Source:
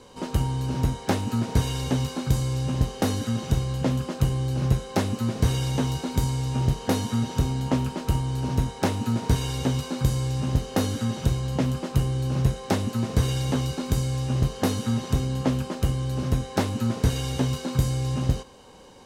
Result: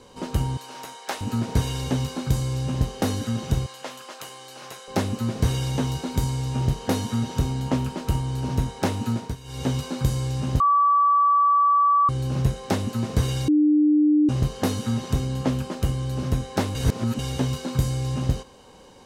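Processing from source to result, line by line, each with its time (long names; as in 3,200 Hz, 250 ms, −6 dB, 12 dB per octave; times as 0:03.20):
0:00.57–0:01.21: high-pass filter 750 Hz
0:03.66–0:04.88: high-pass filter 820 Hz
0:09.12–0:09.68: duck −15.5 dB, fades 0.24 s
0:10.60–0:12.09: beep over 1,150 Hz −15 dBFS
0:13.48–0:14.29: beep over 300 Hz −14.5 dBFS
0:16.75–0:17.19: reverse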